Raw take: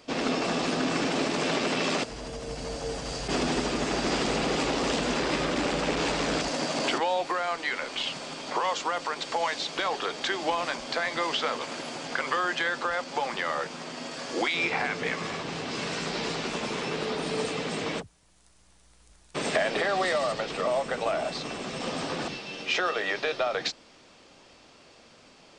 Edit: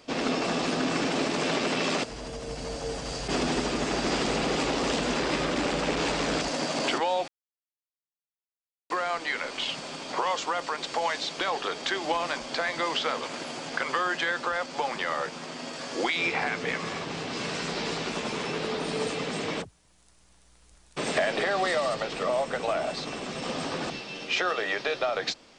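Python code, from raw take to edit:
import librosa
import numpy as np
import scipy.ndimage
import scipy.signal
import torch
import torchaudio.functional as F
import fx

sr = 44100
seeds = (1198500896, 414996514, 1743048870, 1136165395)

y = fx.edit(x, sr, fx.insert_silence(at_s=7.28, length_s=1.62), tone=tone)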